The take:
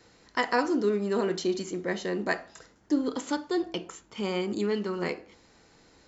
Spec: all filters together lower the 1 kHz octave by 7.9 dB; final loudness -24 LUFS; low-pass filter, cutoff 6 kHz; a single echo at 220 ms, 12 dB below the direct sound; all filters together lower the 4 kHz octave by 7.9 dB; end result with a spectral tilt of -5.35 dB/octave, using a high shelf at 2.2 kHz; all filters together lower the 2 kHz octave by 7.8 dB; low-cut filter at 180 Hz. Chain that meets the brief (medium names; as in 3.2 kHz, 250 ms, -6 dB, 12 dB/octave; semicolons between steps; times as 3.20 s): high-pass 180 Hz; low-pass 6 kHz; peaking EQ 1 kHz -8.5 dB; peaking EQ 2 kHz -3.5 dB; treble shelf 2.2 kHz -5 dB; peaking EQ 4 kHz -3 dB; delay 220 ms -12 dB; trim +8 dB